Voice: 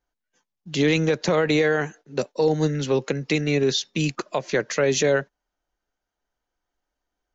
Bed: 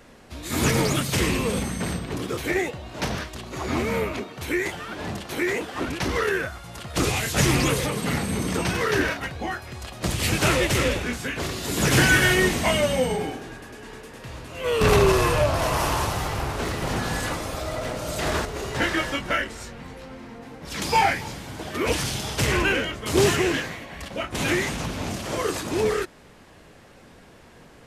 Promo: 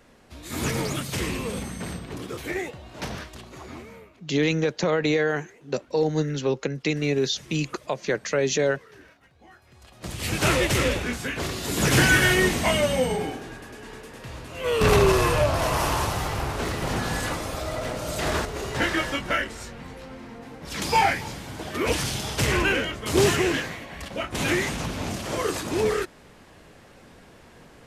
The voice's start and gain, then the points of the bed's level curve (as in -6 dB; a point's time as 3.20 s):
3.55 s, -2.5 dB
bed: 3.42 s -5.5 dB
4.22 s -27.5 dB
9.23 s -27.5 dB
10.48 s -0.5 dB